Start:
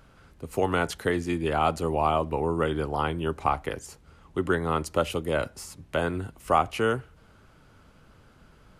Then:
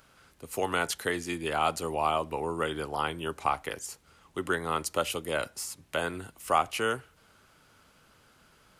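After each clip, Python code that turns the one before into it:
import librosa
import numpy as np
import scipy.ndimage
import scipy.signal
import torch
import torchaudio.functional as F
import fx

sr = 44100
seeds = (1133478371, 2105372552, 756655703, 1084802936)

y = fx.tilt_eq(x, sr, slope=2.5)
y = y * librosa.db_to_amplitude(-2.5)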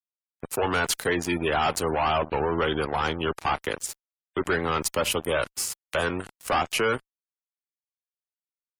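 y = fx.fuzz(x, sr, gain_db=32.0, gate_db=-41.0)
y = fx.spec_gate(y, sr, threshold_db=-25, keep='strong')
y = y * librosa.db_to_amplitude(-6.5)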